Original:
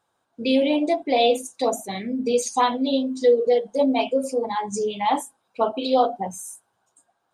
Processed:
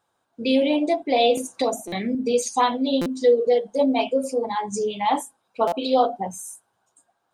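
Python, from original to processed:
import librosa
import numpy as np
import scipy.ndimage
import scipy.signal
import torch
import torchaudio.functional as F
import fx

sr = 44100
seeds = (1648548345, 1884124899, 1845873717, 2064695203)

y = fx.buffer_glitch(x, sr, at_s=(1.87, 3.01, 5.67), block=256, repeats=8)
y = fx.band_squash(y, sr, depth_pct=70, at=(1.37, 2.15))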